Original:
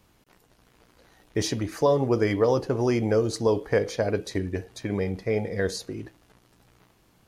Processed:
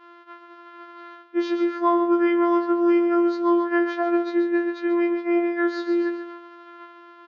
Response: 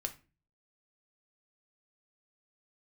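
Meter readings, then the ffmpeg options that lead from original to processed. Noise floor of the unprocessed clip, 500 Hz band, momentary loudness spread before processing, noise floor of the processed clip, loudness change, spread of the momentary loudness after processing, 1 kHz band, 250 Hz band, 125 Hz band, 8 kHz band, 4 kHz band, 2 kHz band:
-62 dBFS, +1.0 dB, 10 LU, -48 dBFS, +4.0 dB, 9 LU, +8.0 dB, +8.5 dB, under -30 dB, under -20 dB, n/a, +5.0 dB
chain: -af "acontrast=56,aecho=1:1:138|276|414|552:0.282|0.107|0.0407|0.0155,crystalizer=i=1:c=0,afftfilt=real='hypot(re,im)*cos(PI*b)':imag='0':win_size=512:overlap=0.75,bandreject=f=1.1k:w=25,areverse,acompressor=threshold=-32dB:ratio=5,areverse,lowshelf=f=160:g=11.5,aresample=16000,aeval=exprs='sgn(val(0))*max(abs(val(0))-0.00158,0)':c=same,aresample=44100,highpass=120,equalizer=f=140:t=q:w=4:g=-5,equalizer=f=200:t=q:w=4:g=7,equalizer=f=590:t=q:w=4:g=-8,equalizer=f=980:t=q:w=4:g=7,equalizer=f=1.4k:t=q:w=4:g=9,equalizer=f=2.5k:t=q:w=4:g=-6,lowpass=f=2.9k:w=0.5412,lowpass=f=2.9k:w=1.3066,afftfilt=real='re*4*eq(mod(b,16),0)':imag='im*4*eq(mod(b,16),0)':win_size=2048:overlap=0.75,volume=3dB"

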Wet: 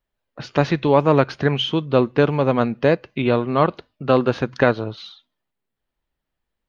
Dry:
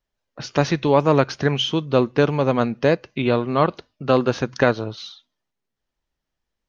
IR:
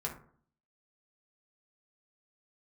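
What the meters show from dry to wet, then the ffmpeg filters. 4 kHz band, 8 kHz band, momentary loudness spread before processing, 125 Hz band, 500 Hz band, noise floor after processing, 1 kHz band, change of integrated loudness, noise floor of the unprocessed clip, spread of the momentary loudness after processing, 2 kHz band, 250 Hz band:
-1.0 dB, n/a, 10 LU, +1.0 dB, +1.0 dB, -81 dBFS, +1.0 dB, +1.0 dB, -82 dBFS, 8 LU, +0.5 dB, +1.0 dB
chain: -af "equalizer=f=5.9k:w=2:g=-11,volume=1dB"

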